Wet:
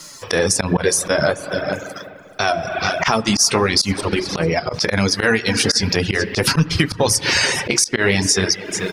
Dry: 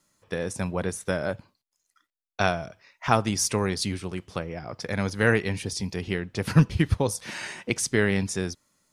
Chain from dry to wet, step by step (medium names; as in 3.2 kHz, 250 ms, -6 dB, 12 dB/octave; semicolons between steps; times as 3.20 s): bass shelf 330 Hz -6 dB; delay 434 ms -20 dB; flange 0.45 Hz, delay 6.1 ms, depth 8.5 ms, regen +35%; peaking EQ 5.1 kHz +9 dB 0.64 oct; 3.92–4.74 s: level held to a coarse grid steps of 14 dB; hum notches 60/120/180/240/300/360 Hz; spring tank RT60 1.9 s, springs 35/49 ms, chirp 55 ms, DRR 9 dB; reverb removal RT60 0.67 s; slow attack 115 ms; compression 4:1, threshold -49 dBFS, peak gain reduction 22 dB; loudness maximiser +36 dB; trim -3 dB